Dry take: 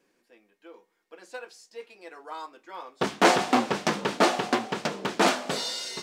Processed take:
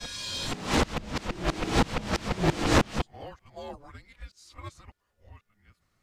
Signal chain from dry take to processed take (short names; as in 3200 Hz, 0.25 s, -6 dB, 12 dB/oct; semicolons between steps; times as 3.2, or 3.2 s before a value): whole clip reversed; frequency shift -410 Hz; gain -2 dB